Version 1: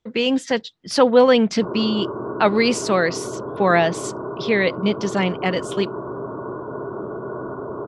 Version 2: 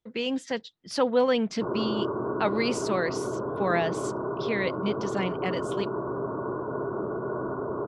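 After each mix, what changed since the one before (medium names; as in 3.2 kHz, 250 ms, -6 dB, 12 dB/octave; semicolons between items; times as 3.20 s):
speech -9.5 dB; reverb: off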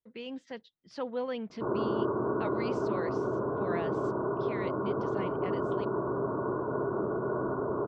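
speech -11.0 dB; master: add distance through air 140 m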